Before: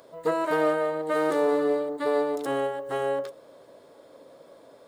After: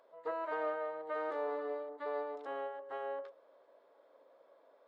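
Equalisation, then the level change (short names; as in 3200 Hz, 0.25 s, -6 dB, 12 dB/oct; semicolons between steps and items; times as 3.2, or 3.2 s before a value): HPF 660 Hz 12 dB/oct; tape spacing loss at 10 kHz 36 dB; -6.0 dB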